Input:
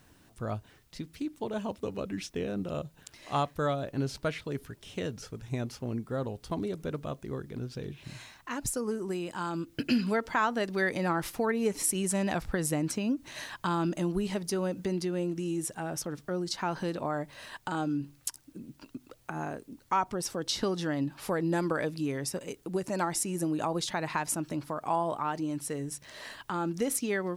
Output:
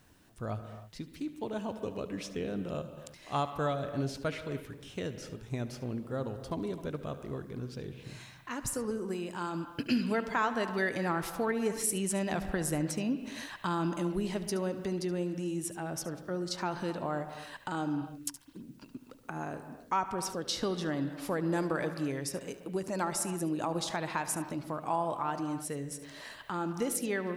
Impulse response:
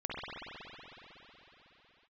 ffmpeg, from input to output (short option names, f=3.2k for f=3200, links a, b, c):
-filter_complex "[0:a]asplit=2[a][b];[1:a]atrim=start_sample=2205,afade=t=out:st=0.3:d=0.01,atrim=end_sample=13671,adelay=73[c];[b][c]afir=irnorm=-1:irlink=0,volume=-12.5dB[d];[a][d]amix=inputs=2:normalize=0,volume=-2.5dB"